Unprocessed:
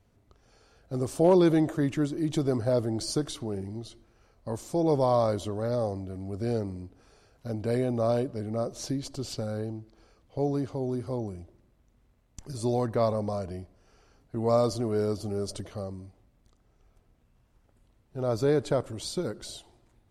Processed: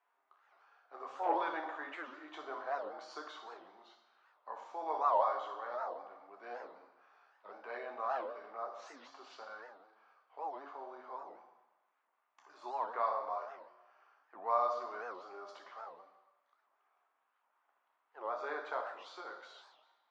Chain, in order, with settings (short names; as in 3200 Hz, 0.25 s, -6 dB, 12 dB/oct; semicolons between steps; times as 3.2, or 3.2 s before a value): ladder high-pass 880 Hz, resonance 45%; tape spacing loss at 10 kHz 45 dB; reverb RT60 1.0 s, pre-delay 3 ms, DRR 2.5 dB; record warp 78 rpm, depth 250 cents; gain +4.5 dB